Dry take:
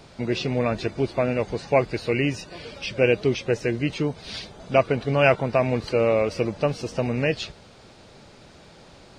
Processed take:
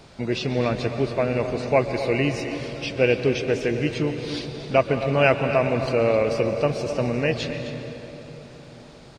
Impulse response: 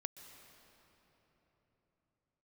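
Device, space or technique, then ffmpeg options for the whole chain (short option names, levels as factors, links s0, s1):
cave: -filter_complex "[0:a]aecho=1:1:261:0.211[s0];[1:a]atrim=start_sample=2205[s1];[s0][s1]afir=irnorm=-1:irlink=0,volume=1.5"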